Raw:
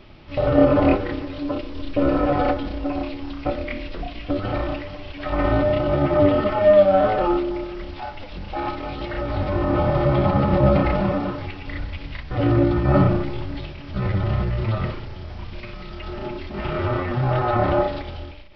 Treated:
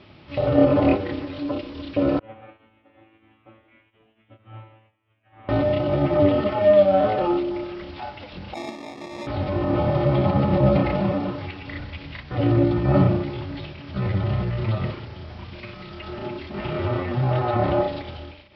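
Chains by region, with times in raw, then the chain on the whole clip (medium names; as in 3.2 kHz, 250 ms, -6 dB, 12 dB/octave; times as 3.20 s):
2.19–5.49 s: CVSD coder 16 kbps + feedback comb 110 Hz, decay 0.76 s, mix 100% + upward expansion 2.5:1, over -49 dBFS
8.54–9.27 s: ladder high-pass 210 Hz, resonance 25% + sample-rate reducer 1.5 kHz
whole clip: Chebyshev band-pass 100–4700 Hz, order 2; dynamic bell 1.4 kHz, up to -5 dB, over -38 dBFS, Q 1.6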